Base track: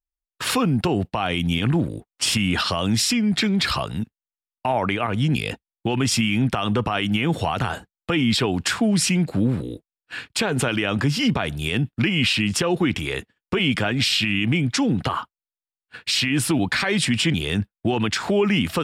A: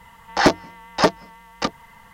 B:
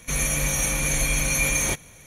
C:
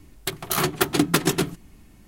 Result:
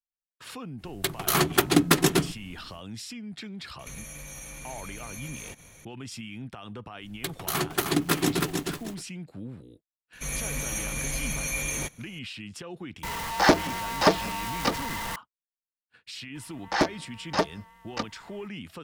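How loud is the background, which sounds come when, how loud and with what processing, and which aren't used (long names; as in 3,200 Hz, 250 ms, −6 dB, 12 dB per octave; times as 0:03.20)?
base track −19 dB
0:00.77: mix in C, fades 0.10 s
0:03.79: mix in B −3.5 dB + downward compressor 16 to 1, threshold −34 dBFS
0:06.97: mix in C −5.5 dB, fades 0.10 s + feedback echo at a low word length 311 ms, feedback 35%, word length 7 bits, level −3.5 dB
0:10.13: mix in B −8 dB
0:13.03: mix in A −4.5 dB + converter with a step at zero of −23.5 dBFS
0:16.35: mix in A −8.5 dB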